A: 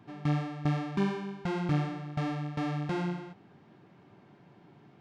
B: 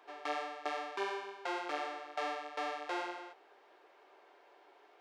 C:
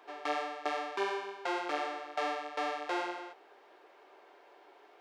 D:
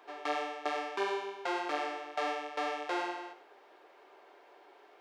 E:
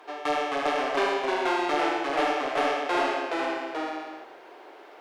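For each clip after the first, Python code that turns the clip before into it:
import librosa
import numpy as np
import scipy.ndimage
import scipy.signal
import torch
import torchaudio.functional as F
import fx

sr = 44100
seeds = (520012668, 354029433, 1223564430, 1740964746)

y1 = scipy.signal.sosfilt(scipy.signal.butter(6, 420.0, 'highpass', fs=sr, output='sos'), x)
y1 = fx.rider(y1, sr, range_db=10, speed_s=0.5)
y1 = y1 * librosa.db_to_amplitude(1.0)
y2 = fx.low_shelf(y1, sr, hz=330.0, db=3.5)
y2 = y2 * librosa.db_to_amplitude(3.0)
y3 = y2 + 10.0 ** (-12.0 / 20.0) * np.pad(y2, (int(100 * sr / 1000.0), 0))[:len(y2)]
y4 = fx.fold_sine(y3, sr, drive_db=4, ceiling_db=-18.5)
y4 = fx.echo_pitch(y4, sr, ms=250, semitones=-1, count=2, db_per_echo=-3.0)
y4 = fx.room_shoebox(y4, sr, seeds[0], volume_m3=3000.0, walls='mixed', distance_m=0.5)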